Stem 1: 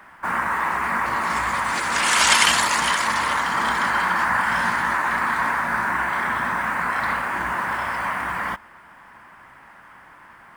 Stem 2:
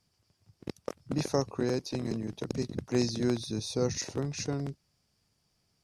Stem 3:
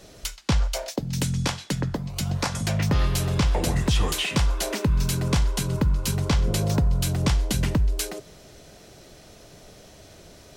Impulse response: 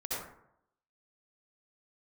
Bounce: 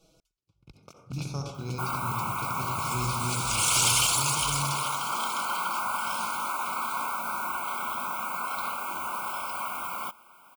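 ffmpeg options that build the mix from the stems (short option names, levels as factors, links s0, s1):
-filter_complex "[0:a]aemphasis=mode=production:type=bsi,adelay=1550,volume=0.422[s0];[1:a]equalizer=f=125:t=o:w=1:g=9,equalizer=f=250:t=o:w=1:g=-5,equalizer=f=500:t=o:w=1:g=-10,equalizer=f=2000:t=o:w=1:g=10,aeval=exprs='sgn(val(0))*max(abs(val(0))-0.00126,0)':c=same,volume=0.398,afade=t=in:st=0.69:d=0.46:silence=0.375837,asplit=3[s1][s2][s3];[s2]volume=0.631[s4];[2:a]aecho=1:1:6.2:0.88,acompressor=threshold=0.0891:ratio=6,volume=0.126[s5];[s3]apad=whole_len=465971[s6];[s5][s6]sidechaingate=range=0.0224:threshold=0.00282:ratio=16:detection=peak[s7];[3:a]atrim=start_sample=2205[s8];[s4][s8]afir=irnorm=-1:irlink=0[s9];[s0][s1][s7][s9]amix=inputs=4:normalize=0,asoftclip=type=tanh:threshold=0.141,asuperstop=centerf=1800:order=12:qfactor=2.6"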